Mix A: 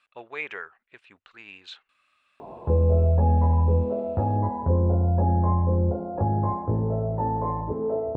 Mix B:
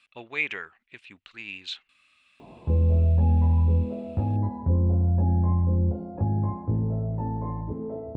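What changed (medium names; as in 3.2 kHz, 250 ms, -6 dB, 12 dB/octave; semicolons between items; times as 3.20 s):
speech +7.5 dB; master: add high-order bell 810 Hz -9.5 dB 2.4 oct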